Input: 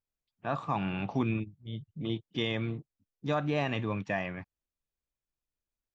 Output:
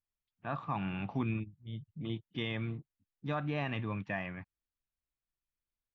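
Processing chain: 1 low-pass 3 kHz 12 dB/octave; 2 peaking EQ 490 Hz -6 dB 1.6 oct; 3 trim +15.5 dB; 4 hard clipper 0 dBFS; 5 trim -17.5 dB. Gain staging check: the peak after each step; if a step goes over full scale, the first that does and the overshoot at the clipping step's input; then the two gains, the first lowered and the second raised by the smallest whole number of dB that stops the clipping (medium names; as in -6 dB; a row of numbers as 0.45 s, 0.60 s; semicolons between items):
-17.0 dBFS, -20.0 dBFS, -4.5 dBFS, -4.5 dBFS, -22.0 dBFS; nothing clips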